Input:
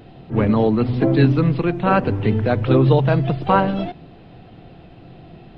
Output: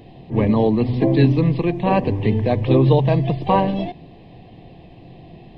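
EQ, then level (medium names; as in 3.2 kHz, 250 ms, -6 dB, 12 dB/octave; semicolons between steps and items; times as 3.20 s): Butterworth band-stop 1.4 kHz, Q 2.4; 0.0 dB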